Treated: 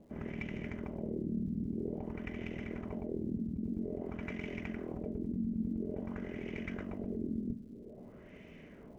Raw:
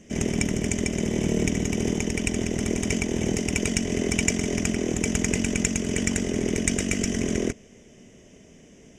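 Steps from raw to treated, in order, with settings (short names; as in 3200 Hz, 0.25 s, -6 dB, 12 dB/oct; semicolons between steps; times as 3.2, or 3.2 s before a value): CVSD 64 kbps; high shelf 4500 Hz -6.5 dB; notch 1800 Hz, Q 22; reverse; compressor, threshold -36 dBFS, peak gain reduction 15.5 dB; reverse; LFO low-pass sine 0.5 Hz 220–2400 Hz; crackle 300/s -62 dBFS; on a send: reverb RT60 0.30 s, pre-delay 3 ms, DRR 15 dB; on the sum: gain -2.5 dB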